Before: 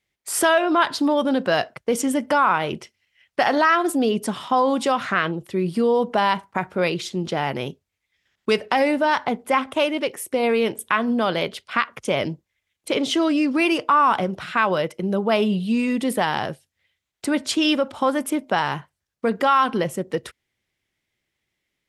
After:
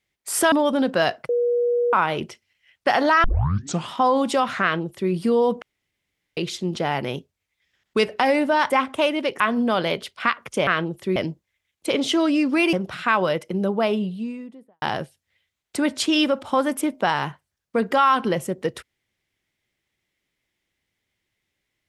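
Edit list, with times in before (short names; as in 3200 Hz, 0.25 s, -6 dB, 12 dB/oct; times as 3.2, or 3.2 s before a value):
0.52–1.04 cut
1.81–2.45 bleep 481 Hz -17.5 dBFS
3.76 tape start 0.65 s
5.14–5.63 copy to 12.18
6.14–6.89 room tone
9.22–9.48 cut
10.18–10.91 cut
13.75–14.22 cut
14.99–16.31 studio fade out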